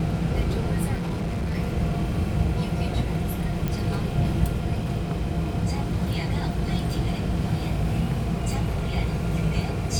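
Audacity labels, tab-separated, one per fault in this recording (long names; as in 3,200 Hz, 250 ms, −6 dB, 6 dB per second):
0.940000	1.580000	clipping −23.5 dBFS
3.680000	3.680000	click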